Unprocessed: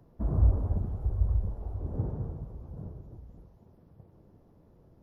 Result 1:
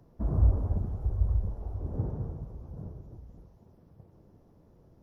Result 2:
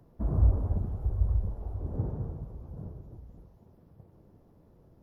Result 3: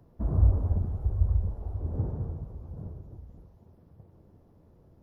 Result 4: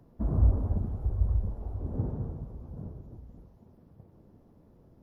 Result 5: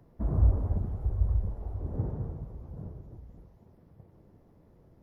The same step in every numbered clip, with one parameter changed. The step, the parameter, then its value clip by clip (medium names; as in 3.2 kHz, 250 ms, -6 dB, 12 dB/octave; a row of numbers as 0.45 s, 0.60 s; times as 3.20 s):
peaking EQ, frequency: 5.8 kHz, 15 kHz, 82 Hz, 240 Hz, 2 kHz